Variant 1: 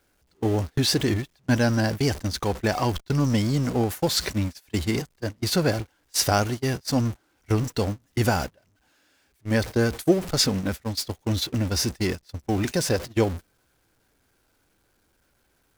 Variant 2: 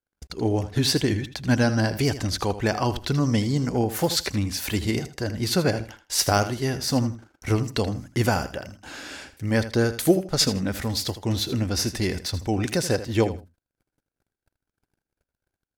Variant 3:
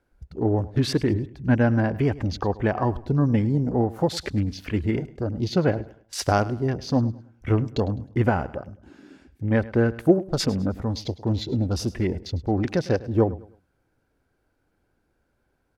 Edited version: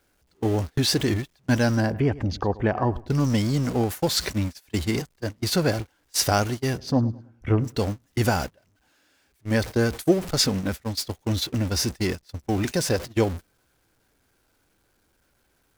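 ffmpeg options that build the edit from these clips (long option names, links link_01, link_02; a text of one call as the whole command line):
ffmpeg -i take0.wav -i take1.wav -i take2.wav -filter_complex "[2:a]asplit=2[link_01][link_02];[0:a]asplit=3[link_03][link_04][link_05];[link_03]atrim=end=1.95,asetpts=PTS-STARTPTS[link_06];[link_01]atrim=start=1.71:end=3.2,asetpts=PTS-STARTPTS[link_07];[link_04]atrim=start=2.96:end=6.93,asetpts=PTS-STARTPTS[link_08];[link_02]atrim=start=6.69:end=7.83,asetpts=PTS-STARTPTS[link_09];[link_05]atrim=start=7.59,asetpts=PTS-STARTPTS[link_10];[link_06][link_07]acrossfade=duration=0.24:curve1=tri:curve2=tri[link_11];[link_11][link_08]acrossfade=duration=0.24:curve1=tri:curve2=tri[link_12];[link_12][link_09]acrossfade=duration=0.24:curve1=tri:curve2=tri[link_13];[link_13][link_10]acrossfade=duration=0.24:curve1=tri:curve2=tri" out.wav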